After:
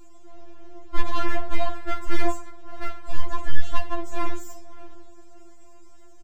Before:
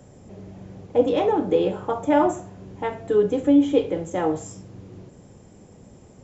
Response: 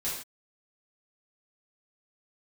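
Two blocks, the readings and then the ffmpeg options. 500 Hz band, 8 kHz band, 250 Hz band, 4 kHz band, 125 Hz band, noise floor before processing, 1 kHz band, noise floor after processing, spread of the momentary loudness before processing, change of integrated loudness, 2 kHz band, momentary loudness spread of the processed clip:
-15.0 dB, n/a, -15.5 dB, -1.0 dB, 0.0 dB, -49 dBFS, -4.5 dB, -40 dBFS, 23 LU, -11.0 dB, +2.5 dB, 20 LU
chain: -filter_complex "[0:a]asplit=2[a][b];[b]adelay=573,lowpass=f=1.8k:p=1,volume=-18.5dB,asplit=2[c][d];[d]adelay=573,lowpass=f=1.8k:p=1,volume=0.31,asplit=2[e][f];[f]adelay=573,lowpass=f=1.8k:p=1,volume=0.31[g];[a][c][e][g]amix=inputs=4:normalize=0,aeval=exprs='abs(val(0))':c=same,afftfilt=real='re*4*eq(mod(b,16),0)':imag='im*4*eq(mod(b,16),0)':win_size=2048:overlap=0.75"

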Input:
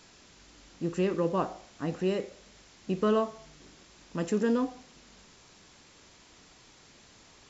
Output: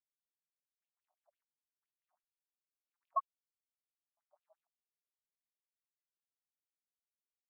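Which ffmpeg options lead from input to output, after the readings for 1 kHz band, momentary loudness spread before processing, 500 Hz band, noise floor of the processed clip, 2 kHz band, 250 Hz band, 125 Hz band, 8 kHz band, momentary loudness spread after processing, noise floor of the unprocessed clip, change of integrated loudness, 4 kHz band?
-7.5 dB, 10 LU, -29.5 dB, under -85 dBFS, under -40 dB, under -40 dB, under -40 dB, n/a, 0 LU, -57 dBFS, -9.0 dB, under -35 dB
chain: -af "aeval=exprs='0.178*(cos(1*acos(clip(val(0)/0.178,-1,1)))-cos(1*PI/2))+0.0316*(cos(4*acos(clip(val(0)/0.178,-1,1)))-cos(4*PI/2))':c=same,afftfilt=real='re*gte(hypot(re,im),0.282)':imag='im*gte(hypot(re,im),0.282)':win_size=1024:overlap=0.75,afftfilt=real='re*between(b*sr/1024,840*pow(3600/840,0.5+0.5*sin(2*PI*5.9*pts/sr))/1.41,840*pow(3600/840,0.5+0.5*sin(2*PI*5.9*pts/sr))*1.41)':imag='im*between(b*sr/1024,840*pow(3600/840,0.5+0.5*sin(2*PI*5.9*pts/sr))/1.41,840*pow(3600/840,0.5+0.5*sin(2*PI*5.9*pts/sr))*1.41)':win_size=1024:overlap=0.75,volume=3.5dB"

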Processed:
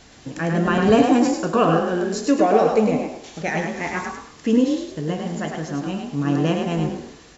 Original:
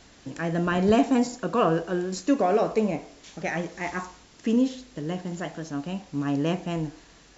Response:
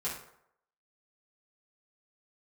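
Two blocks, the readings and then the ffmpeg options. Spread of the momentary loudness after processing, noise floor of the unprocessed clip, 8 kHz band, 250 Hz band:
12 LU, -54 dBFS, n/a, +5.5 dB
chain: -filter_complex "[0:a]asplit=5[a][b][c][d][e];[b]adelay=103,afreqshift=40,volume=-4.5dB[f];[c]adelay=206,afreqshift=80,volume=-14.1dB[g];[d]adelay=309,afreqshift=120,volume=-23.8dB[h];[e]adelay=412,afreqshift=160,volume=-33.4dB[i];[a][f][g][h][i]amix=inputs=5:normalize=0,asplit=2[j][k];[1:a]atrim=start_sample=2205[l];[k][l]afir=irnorm=-1:irlink=0,volume=-12dB[m];[j][m]amix=inputs=2:normalize=0,volume=3dB"

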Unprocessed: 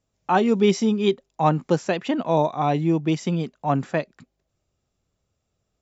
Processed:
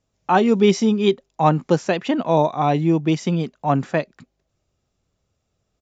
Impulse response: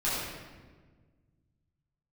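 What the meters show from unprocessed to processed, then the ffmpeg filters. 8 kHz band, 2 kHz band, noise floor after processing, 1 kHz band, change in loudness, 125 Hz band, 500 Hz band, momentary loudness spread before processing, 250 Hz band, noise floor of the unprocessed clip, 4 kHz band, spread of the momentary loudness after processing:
n/a, +3.0 dB, -74 dBFS, +3.0 dB, +3.0 dB, +3.0 dB, +3.0 dB, 7 LU, +3.0 dB, -77 dBFS, +3.0 dB, 7 LU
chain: -af "aresample=16000,aresample=44100,volume=3dB"

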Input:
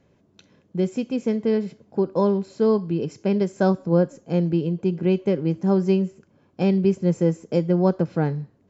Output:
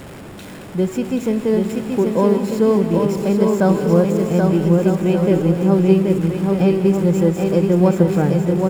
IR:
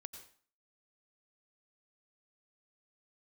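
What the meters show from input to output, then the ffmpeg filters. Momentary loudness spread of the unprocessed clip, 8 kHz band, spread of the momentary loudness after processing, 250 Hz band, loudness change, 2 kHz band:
6 LU, n/a, 7 LU, +6.5 dB, +6.0 dB, +7.0 dB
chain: -filter_complex "[0:a]aeval=exprs='val(0)+0.5*0.0224*sgn(val(0))':c=same,equalizer=f=4.4k:t=o:w=0.62:g=-5.5,bandreject=f=6.1k:w=8.9,aecho=1:1:780|1248|1529|1697|1798:0.631|0.398|0.251|0.158|0.1,asplit=2[a][b];[1:a]atrim=start_sample=2205,asetrate=25137,aresample=44100[c];[b][c]afir=irnorm=-1:irlink=0,volume=4dB[d];[a][d]amix=inputs=2:normalize=0,volume=-3.5dB"

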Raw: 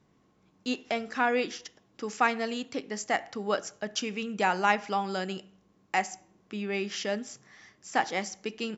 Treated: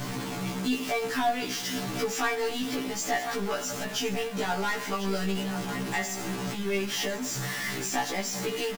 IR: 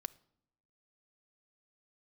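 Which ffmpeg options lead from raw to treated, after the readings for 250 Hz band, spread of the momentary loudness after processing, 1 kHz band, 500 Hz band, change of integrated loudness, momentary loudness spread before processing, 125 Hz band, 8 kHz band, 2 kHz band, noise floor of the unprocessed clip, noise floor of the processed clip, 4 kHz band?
+3.5 dB, 4 LU, -2.0 dB, +1.5 dB, +1.0 dB, 14 LU, +9.0 dB, n/a, 0.0 dB, -67 dBFS, -35 dBFS, +5.0 dB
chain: -filter_complex "[0:a]aeval=exprs='val(0)+0.5*0.0299*sgn(val(0))':c=same[a];[1:a]atrim=start_sample=2205[b];[a][b]afir=irnorm=-1:irlink=0,asplit=2[c][d];[d]acompressor=threshold=-37dB:ratio=6,volume=2dB[e];[c][e]amix=inputs=2:normalize=0,aecho=1:1:1049:0.224,asoftclip=type=tanh:threshold=-21.5dB,aecho=1:1:6.9:0.65,afftfilt=real='re*1.73*eq(mod(b,3),0)':imag='im*1.73*eq(mod(b,3),0)':win_size=2048:overlap=0.75"

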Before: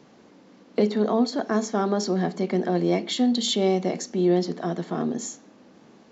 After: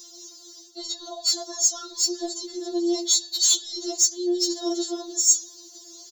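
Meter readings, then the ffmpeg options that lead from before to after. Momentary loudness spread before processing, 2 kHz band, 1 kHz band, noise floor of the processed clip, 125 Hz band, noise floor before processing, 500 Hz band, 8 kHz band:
7 LU, under -10 dB, -10.5 dB, -48 dBFS, under -40 dB, -54 dBFS, -7.0 dB, n/a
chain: -af "firequalizer=gain_entry='entry(320,0);entry(2300,-20);entry(3700,7);entry(7300,11)':delay=0.05:min_phase=1,areverse,acompressor=threshold=-28dB:ratio=16,areverse,crystalizer=i=7.5:c=0,acontrast=85,afftfilt=real='re*4*eq(mod(b,16),0)':imag='im*4*eq(mod(b,16),0)':win_size=2048:overlap=0.75,volume=-5.5dB"

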